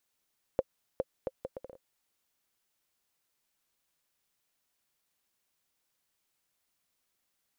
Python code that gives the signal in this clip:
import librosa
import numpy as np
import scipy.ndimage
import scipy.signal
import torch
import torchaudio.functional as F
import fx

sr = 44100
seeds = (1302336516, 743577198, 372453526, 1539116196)

y = fx.bouncing_ball(sr, first_gap_s=0.41, ratio=0.66, hz=526.0, decay_ms=39.0, level_db=-14.5)